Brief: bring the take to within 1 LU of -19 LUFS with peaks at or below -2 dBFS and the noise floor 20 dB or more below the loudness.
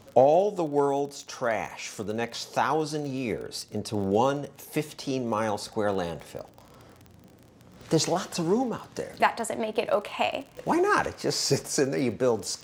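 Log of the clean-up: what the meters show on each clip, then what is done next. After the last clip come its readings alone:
ticks 33/s; loudness -27.5 LUFS; peak -6.5 dBFS; loudness target -19.0 LUFS
-> de-click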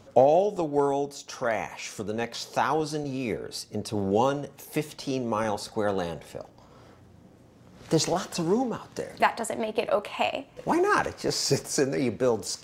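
ticks 0.079/s; loudness -27.5 LUFS; peak -6.5 dBFS; loudness target -19.0 LUFS
-> gain +8.5 dB; limiter -2 dBFS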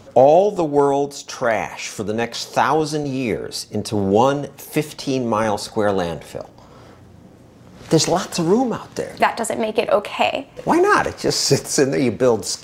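loudness -19.0 LUFS; peak -2.0 dBFS; noise floor -45 dBFS

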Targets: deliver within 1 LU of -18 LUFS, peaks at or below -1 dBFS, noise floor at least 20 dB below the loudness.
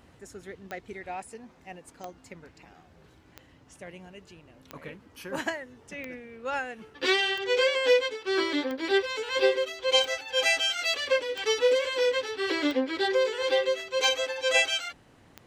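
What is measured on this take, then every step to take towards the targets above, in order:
clicks 12; loudness -26.0 LUFS; peak -10.5 dBFS; loudness target -18.0 LUFS
-> de-click; gain +8 dB

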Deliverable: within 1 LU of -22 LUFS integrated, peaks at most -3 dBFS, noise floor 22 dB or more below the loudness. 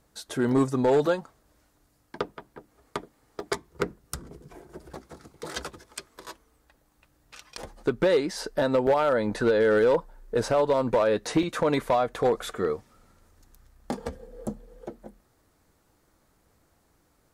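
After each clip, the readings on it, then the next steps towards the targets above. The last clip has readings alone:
clipped 0.6%; flat tops at -15.5 dBFS; dropouts 4; longest dropout 1.7 ms; loudness -26.0 LUFS; peak -15.5 dBFS; loudness target -22.0 LUFS
-> clip repair -15.5 dBFS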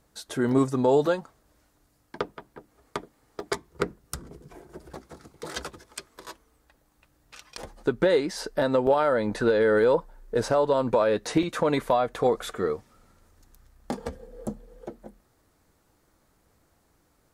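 clipped 0.0%; dropouts 4; longest dropout 1.7 ms
-> interpolate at 0.49/3.4/8.87/11.43, 1.7 ms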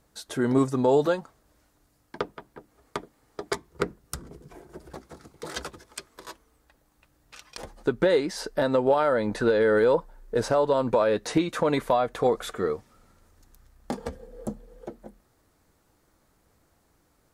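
dropouts 0; loudness -25.5 LUFS; peak -10.0 dBFS; loudness target -22.0 LUFS
-> gain +3.5 dB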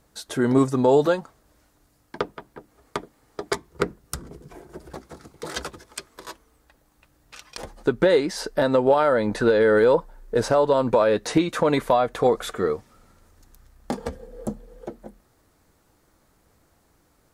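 loudness -22.0 LUFS; peak -6.5 dBFS; noise floor -63 dBFS

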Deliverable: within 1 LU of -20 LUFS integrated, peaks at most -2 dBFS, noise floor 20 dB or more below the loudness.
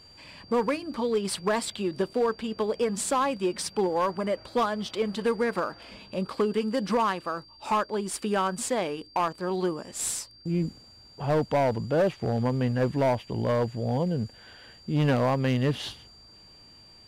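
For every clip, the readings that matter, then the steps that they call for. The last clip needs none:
clipped 1.2%; flat tops at -18.5 dBFS; steady tone 4700 Hz; tone level -51 dBFS; loudness -28.0 LUFS; peak -18.5 dBFS; loudness target -20.0 LUFS
-> clip repair -18.5 dBFS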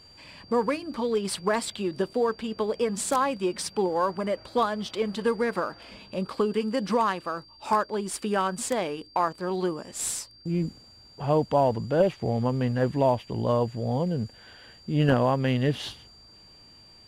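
clipped 0.0%; steady tone 4700 Hz; tone level -51 dBFS
-> notch 4700 Hz, Q 30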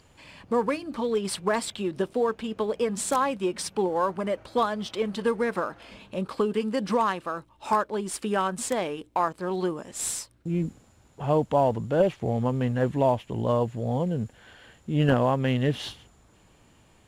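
steady tone none; loudness -27.0 LUFS; peak -9.5 dBFS; loudness target -20.0 LUFS
-> gain +7 dB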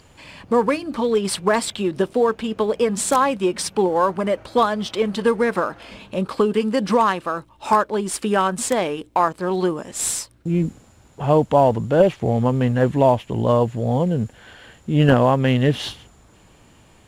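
loudness -20.0 LUFS; peak -2.5 dBFS; noise floor -52 dBFS

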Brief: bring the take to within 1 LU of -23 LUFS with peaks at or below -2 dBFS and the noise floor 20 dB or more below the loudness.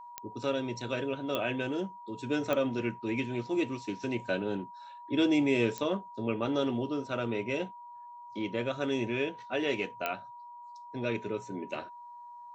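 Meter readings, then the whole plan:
clicks 5; steady tone 960 Hz; tone level -45 dBFS; loudness -32.5 LUFS; peak -14.5 dBFS; loudness target -23.0 LUFS
-> de-click; notch 960 Hz, Q 30; gain +9.5 dB

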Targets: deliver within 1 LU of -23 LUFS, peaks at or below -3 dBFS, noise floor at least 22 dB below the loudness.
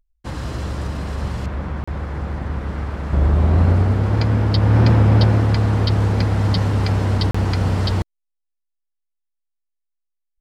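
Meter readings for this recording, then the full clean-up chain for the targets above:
dropouts 2; longest dropout 35 ms; loudness -19.0 LUFS; peak -4.0 dBFS; loudness target -23.0 LUFS
-> interpolate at 1.84/7.31, 35 ms; gain -4 dB

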